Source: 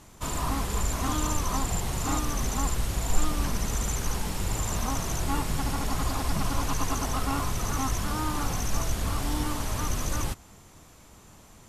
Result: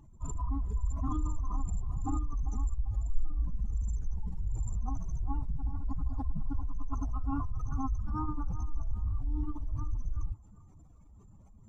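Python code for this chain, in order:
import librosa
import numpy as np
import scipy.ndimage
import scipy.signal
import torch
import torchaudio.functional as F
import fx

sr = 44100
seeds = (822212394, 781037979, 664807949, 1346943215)

y = fx.spec_expand(x, sr, power=2.6)
y = fx.echo_banded(y, sr, ms=393, feedback_pct=43, hz=770.0, wet_db=-12.5)
y = y * librosa.db_to_amplitude(-2.5)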